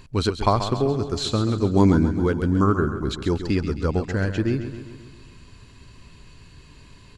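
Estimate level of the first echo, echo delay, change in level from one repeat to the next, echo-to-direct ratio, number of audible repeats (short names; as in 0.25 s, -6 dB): -10.0 dB, 0.134 s, -5.0 dB, -8.5 dB, 6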